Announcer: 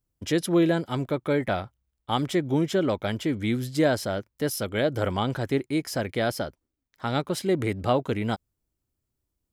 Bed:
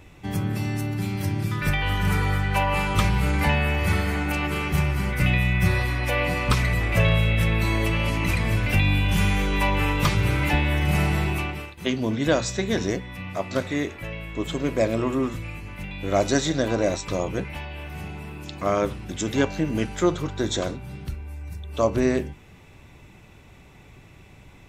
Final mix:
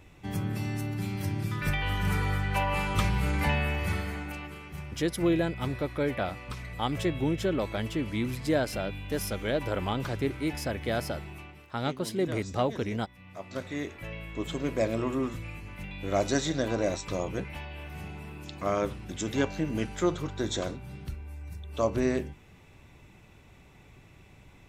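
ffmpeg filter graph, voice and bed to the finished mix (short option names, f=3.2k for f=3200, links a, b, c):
-filter_complex "[0:a]adelay=4700,volume=-4.5dB[a];[1:a]volume=7dB,afade=t=out:st=3.59:d=1:silence=0.237137,afade=t=in:st=13.18:d=0.95:silence=0.237137[b];[a][b]amix=inputs=2:normalize=0"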